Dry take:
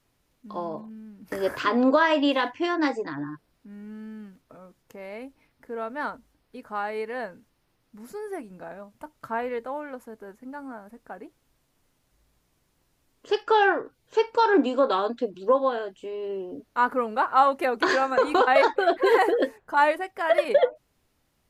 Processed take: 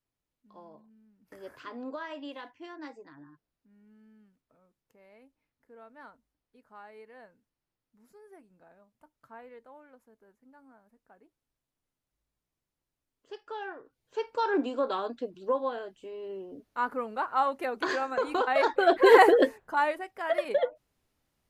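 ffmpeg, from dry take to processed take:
-af "volume=1.58,afade=t=in:st=13.75:d=0.73:silence=0.266073,afade=t=in:st=18.55:d=0.68:silence=0.266073,afade=t=out:st=19.23:d=0.6:silence=0.281838"

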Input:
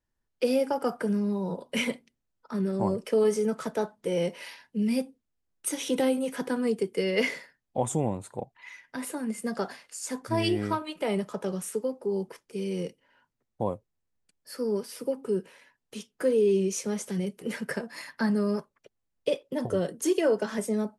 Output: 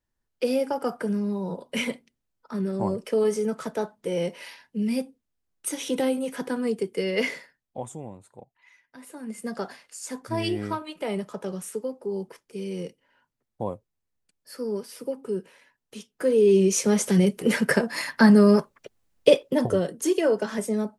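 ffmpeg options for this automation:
-af "volume=13.3,afade=t=out:st=7.34:d=0.6:silence=0.266073,afade=t=in:st=9.05:d=0.4:silence=0.316228,afade=t=in:st=16.13:d=0.99:silence=0.251189,afade=t=out:st=19.34:d=0.5:silence=0.354813"

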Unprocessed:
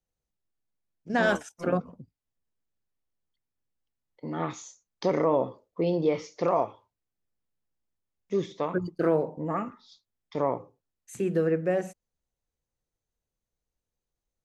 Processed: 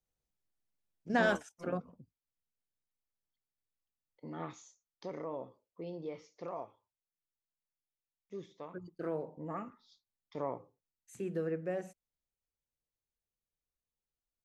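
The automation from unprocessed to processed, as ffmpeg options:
-af "volume=1.5,afade=t=out:st=1.1:d=0.4:silence=0.446684,afade=t=out:st=4.28:d=0.77:silence=0.446684,afade=t=in:st=8.79:d=0.67:silence=0.473151"

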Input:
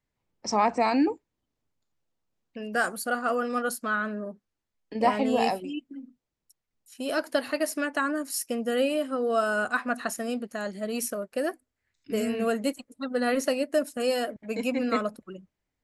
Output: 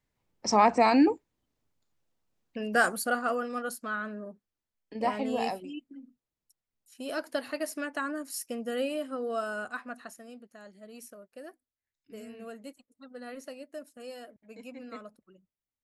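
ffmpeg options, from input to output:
-af "volume=1.26,afade=t=out:st=2.88:d=0.61:silence=0.398107,afade=t=out:st=9.15:d=1.09:silence=0.281838"

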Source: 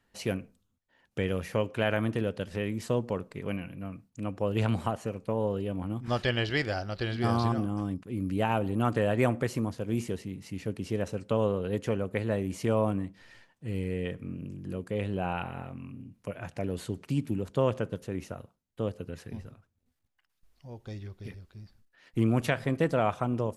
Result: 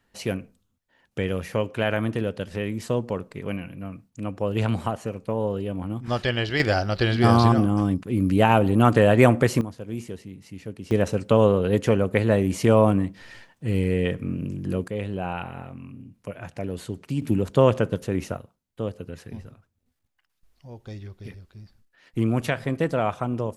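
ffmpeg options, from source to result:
-af "asetnsamples=n=441:p=0,asendcmd='6.6 volume volume 10dB;9.61 volume volume -2dB;10.91 volume volume 9.5dB;14.88 volume volume 2dB;17.22 volume volume 9dB;18.37 volume volume 2.5dB',volume=1.5"

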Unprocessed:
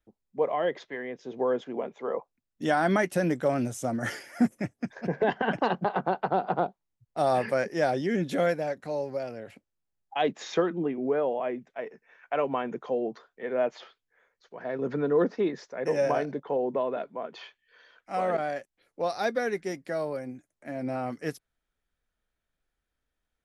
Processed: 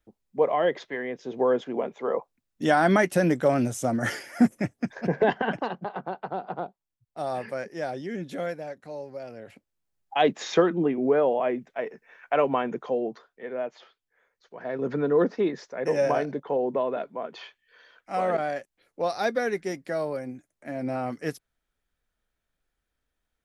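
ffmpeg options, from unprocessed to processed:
-af "volume=14.1,afade=t=out:st=5.22:d=0.49:silence=0.316228,afade=t=in:st=9.15:d=1.06:silence=0.281838,afade=t=out:st=12.4:d=1.3:silence=0.281838,afade=t=in:st=13.7:d=1.2:silence=0.398107"

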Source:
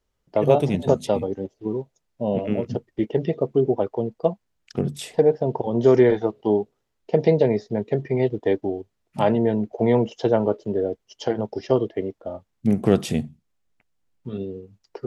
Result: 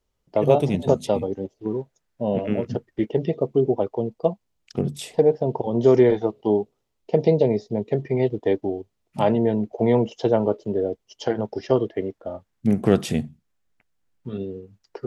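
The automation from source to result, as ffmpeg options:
-af "asetnsamples=n=441:p=0,asendcmd='1.66 equalizer g 5;3.09 equalizer g -5.5;7.22 equalizer g -14.5;7.86 equalizer g -3.5;11.26 equalizer g 3',equalizer=f=1600:t=o:w=0.61:g=-3.5"

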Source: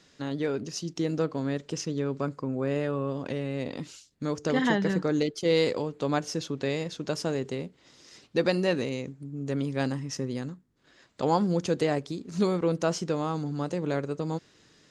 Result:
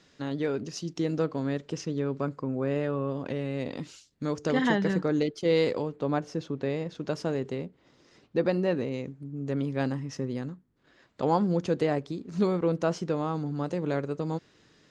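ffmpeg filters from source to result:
-af "asetnsamples=n=441:p=0,asendcmd='1.6 lowpass f 3200;3.39 lowpass f 5900;5.01 lowpass f 3000;5.96 lowpass f 1300;6.95 lowpass f 2400;7.65 lowpass f 1200;8.94 lowpass f 2500;13.64 lowpass f 3900',lowpass=f=5000:p=1"

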